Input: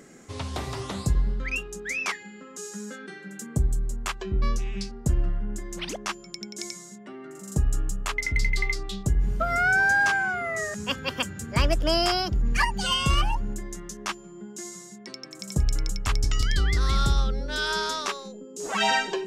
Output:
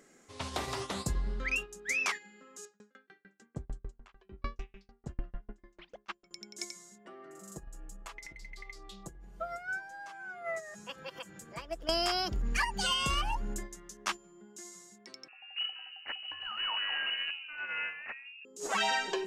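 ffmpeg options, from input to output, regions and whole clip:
ffmpeg -i in.wav -filter_complex "[0:a]asettb=1/sr,asplit=3[link_01][link_02][link_03];[link_01]atrim=end=2.654[link_04];[link_02]atrim=start=2.65:end=6.31,asetpts=PTS-STARTPTS,afade=type=in:duration=0.004:curve=qsin,afade=type=out:start_time=3.656:duration=0.004:curve=qsin,lowpass=3300,aeval=exprs='val(0)*pow(10,-33*if(lt(mod(6.7*n/s,1),2*abs(6.7)/1000),1-mod(6.7*n/s,1)/(2*abs(6.7)/1000),(mod(6.7*n/s,1)-2*abs(6.7)/1000)/(1-2*abs(6.7)/1000))/20)':channel_layout=same[link_05];[link_03]atrim=start=6.306[link_06];[link_04][link_05]acrossfade=duration=0.004:curve1=hsin:curve2=qsin[link_07];[link_07][link_06]acrossfade=duration=0.004:curve1=qsin:curve2=hsin,asettb=1/sr,asplit=3[link_08][link_09][link_10];[link_08]atrim=end=7.054[link_11];[link_09]atrim=start=7.05:end=11.89,asetpts=PTS-STARTPTS,afade=type=in:duration=0.004:curve=qsin,afade=type=out:start_time=4.836:duration=0.004:curve=qsin,equalizer=frequency=580:width_type=o:width=2:gain=6,acompressor=threshold=-33dB:ratio=10:attack=3.2:release=140:knee=1:detection=peak,aecho=1:1:6:0.63,atrim=end_sample=213444[link_12];[link_10]atrim=start=11.886[link_13];[link_11][link_12]acrossfade=duration=0.004:curve1=hsin:curve2=qsin[link_14];[link_14][link_13]acrossfade=duration=0.004:curve1=qsin:curve2=hsin,asettb=1/sr,asplit=3[link_15][link_16][link_17];[link_15]atrim=end=15.284[link_18];[link_16]atrim=start=15.28:end=18.45,asetpts=PTS-STARTPTS,afade=type=in:duration=0.004:curve=qsin,afade=type=out:start_time=3.166:duration=0.004:curve=qsin,highpass=95,volume=30dB,asoftclip=hard,volume=-30dB,lowpass=frequency=2600:width_type=q:width=0.5098,lowpass=frequency=2600:width_type=q:width=0.6013,lowpass=frequency=2600:width_type=q:width=0.9,lowpass=frequency=2600:width_type=q:width=2.563,afreqshift=-3000[link_19];[link_17]atrim=start=18.446[link_20];[link_18][link_19]acrossfade=duration=0.004:curve1=hsin:curve2=qsin[link_21];[link_21][link_20]acrossfade=duration=0.004:curve1=qsin:curve2=hsin,agate=range=-9dB:threshold=-33dB:ratio=16:detection=peak,equalizer=frequency=90:width=0.42:gain=-10.5,acompressor=threshold=-28dB:ratio=4" out.wav

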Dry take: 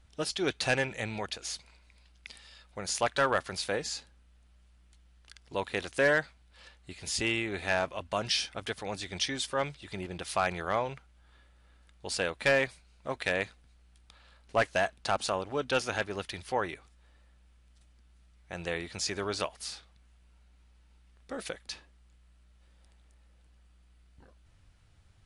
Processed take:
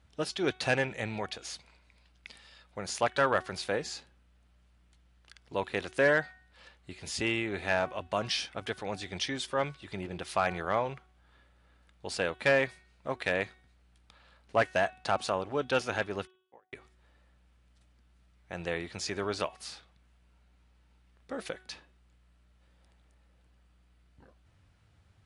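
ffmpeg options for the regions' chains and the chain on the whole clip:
ffmpeg -i in.wav -filter_complex "[0:a]asettb=1/sr,asplit=3[link_01][link_02][link_03];[link_01]atrim=end=16.274[link_04];[link_02]atrim=start=16.27:end=16.73,asetpts=PTS-STARTPTS,afade=type=in:duration=0.004:curve=qsin,afade=type=out:start_time=0.456:duration=0.004:curve=qsin,acompressor=threshold=-46dB:ratio=4:attack=3.2:release=140:knee=1:detection=peak,agate=range=-46dB:threshold=-45dB:ratio=16:release=100:detection=peak,aeval=exprs='val(0)*sin(2*PI*27*n/s)':channel_layout=same[link_05];[link_03]atrim=start=16.726[link_06];[link_04][link_05]acrossfade=duration=0.004:curve1=hsin:curve2=qsin[link_07];[link_07][link_06]acrossfade=duration=0.004:curve1=qsin:curve2=hsin,highpass=71,highshelf=frequency=3900:gain=-7.5,bandreject=frequency=371.9:width_type=h:width=4,bandreject=frequency=743.8:width_type=h:width=4,bandreject=frequency=1115.7:width_type=h:width=4,bandreject=frequency=1487.6:width_type=h:width=4,bandreject=frequency=1859.5:width_type=h:width=4,bandreject=frequency=2231.4:width_type=h:width=4,bandreject=frequency=2603.3:width_type=h:width=4,bandreject=frequency=2975.2:width_type=h:width=4,bandreject=frequency=3347.1:width_type=h:width=4,bandreject=frequency=3719:width_type=h:width=4,volume=1dB" out.wav

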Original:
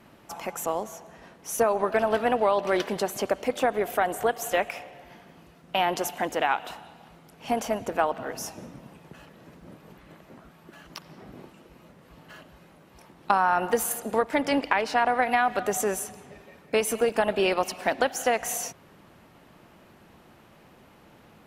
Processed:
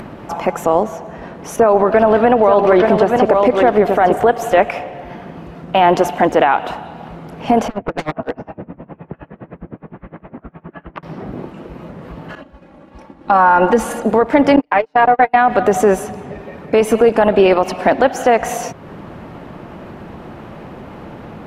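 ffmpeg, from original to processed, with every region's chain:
ffmpeg -i in.wav -filter_complex "[0:a]asettb=1/sr,asplit=3[link_01][link_02][link_03];[link_01]atrim=end=1.564[link_04];[link_02]atrim=start=1.56:end=4.17,asetpts=PTS-STARTPTS,afade=type=in:duration=0.004:curve=qsin,afade=type=out:start_time=2.606:duration=0.004:curve=qsin,acrossover=split=3700[link_05][link_06];[link_06]acompressor=threshold=-44dB:ratio=4:attack=1:release=60[link_07];[link_05][link_07]amix=inputs=2:normalize=0,aecho=1:1:878:0.447,atrim=end_sample=115101[link_08];[link_03]atrim=start=4.166[link_09];[link_04][link_08]acrossfade=duration=0.004:curve1=hsin:curve2=qsin[link_10];[link_10][link_09]acrossfade=duration=0.004:curve1=qsin:curve2=hsin,asettb=1/sr,asplit=3[link_11][link_12][link_13];[link_11]atrim=end=7.684[link_14];[link_12]atrim=start=7.68:end=11.03,asetpts=PTS-STARTPTS,afade=type=in:duration=0.004:curve=qsin,afade=type=out:start_time=3.346:duration=0.004:curve=qsin,lowpass=frequency=2500:width=0.5412,lowpass=frequency=2500:width=1.3066,aeval=exprs='0.0473*(abs(mod(val(0)/0.0473+3,4)-2)-1)':channel_layout=same,aeval=exprs='val(0)*pow(10,-27*(0.5-0.5*cos(2*PI*9.7*n/s))/20)':channel_layout=same[link_15];[link_13]atrim=start=11.026[link_16];[link_14][link_15]acrossfade=duration=0.004:curve1=hsin:curve2=qsin[link_17];[link_17][link_16]acrossfade=duration=0.004:curve1=qsin:curve2=hsin,asettb=1/sr,asplit=3[link_18][link_19][link_20];[link_18]atrim=end=12.354[link_21];[link_19]atrim=start=12.35:end=14.05,asetpts=PTS-STARTPTS,afade=type=in:duration=0.004:curve=qsin,afade=type=out:start_time=1.696:duration=0.004:curve=qsin,lowpass=10000,agate=range=-33dB:threshold=-42dB:ratio=3:release=100:detection=peak,aecho=1:1:3.6:0.56,atrim=end_sample=74970[link_22];[link_20]atrim=start=14.046[link_23];[link_21][link_22]acrossfade=duration=0.004:curve1=hsin:curve2=qsin[link_24];[link_24][link_23]acrossfade=duration=0.004:curve1=qsin:curve2=hsin,asettb=1/sr,asplit=3[link_25][link_26][link_27];[link_25]atrim=end=14.564[link_28];[link_26]atrim=start=14.56:end=15.36,asetpts=PTS-STARTPTS,afade=type=in:duration=0.004:curve=qsin,afade=type=out:start_time=0.796:duration=0.004:curve=qsin,agate=range=-41dB:threshold=-24dB:ratio=16:release=100:detection=peak,aecho=1:1:6.7:0.59,atrim=end_sample=35280[link_29];[link_27]atrim=start=15.356[link_30];[link_28][link_29]acrossfade=duration=0.004:curve1=hsin:curve2=qsin[link_31];[link_31][link_30]acrossfade=duration=0.004:curve1=qsin:curve2=hsin,lowpass=frequency=1000:poles=1,acompressor=mode=upward:threshold=-44dB:ratio=2.5,alimiter=level_in=19dB:limit=-1dB:release=50:level=0:latency=1,volume=-1dB" out.wav

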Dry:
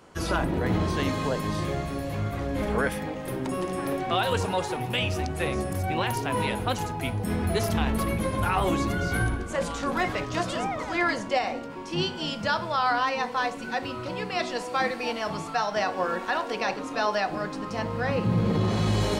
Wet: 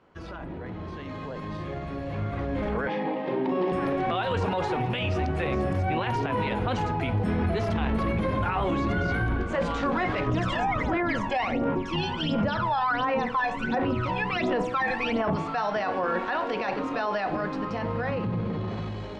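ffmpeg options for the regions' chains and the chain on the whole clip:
ffmpeg -i in.wav -filter_complex "[0:a]asettb=1/sr,asplit=3[link_01][link_02][link_03];[link_01]atrim=end=2.874[link_04];[link_02]atrim=start=2.87:end=3.72,asetpts=PTS-STARTPTS,afade=type=in:duration=0.004:curve=qsin,afade=type=out:start_time=0.846:duration=0.004:curve=qsin,highpass=frequency=160:width=0.5412,highpass=frequency=160:width=1.3066,equalizer=frequency=390:width_type=q:width=4:gain=5,equalizer=frequency=900:width_type=q:width=4:gain=7,equalizer=frequency=1400:width_type=q:width=4:gain=-8,lowpass=frequency=4800:width=0.5412,lowpass=frequency=4800:width=1.3066,bandreject=frequency=50:width_type=h:width=6,bandreject=frequency=100:width_type=h:width=6,bandreject=frequency=150:width_type=h:width=6,bandreject=frequency=200:width_type=h:width=6,bandreject=frequency=250:width_type=h:width=6,bandreject=frequency=300:width_type=h:width=6,bandreject=frequency=350:width_type=h:width=6,asplit=2[link_05][link_06];[link_06]adelay=35,volume=-11dB[link_07];[link_05][link_07]amix=inputs=2:normalize=0,atrim=end_sample=37485[link_08];[link_03]atrim=start=3.716[link_09];[link_04][link_08]acrossfade=duration=0.004:curve1=hsin:curve2=qsin[link_10];[link_10][link_09]acrossfade=duration=0.004:curve1=qsin:curve2=hsin,asettb=1/sr,asplit=3[link_11][link_12][link_13];[link_11]atrim=end=10.264[link_14];[link_12]atrim=start=10.26:end=15.36,asetpts=PTS-STARTPTS,afade=type=in:duration=0.004:curve=qsin,afade=type=out:start_time=5.096:duration=0.004:curve=qsin,equalizer=frequency=4500:width_type=o:width=0.24:gain=-7.5,aphaser=in_gain=1:out_gain=1:delay=1.2:decay=0.75:speed=1.4:type=sinusoidal[link_15];[link_13]atrim=start=15.356[link_16];[link_14][link_15]acrossfade=duration=0.004:curve1=hsin:curve2=qsin[link_17];[link_17][link_16]acrossfade=duration=0.004:curve1=qsin:curve2=hsin,alimiter=limit=-22.5dB:level=0:latency=1:release=22,lowpass=3000,dynaudnorm=framelen=940:gausssize=5:maxgain=12dB,volume=-7.5dB" out.wav

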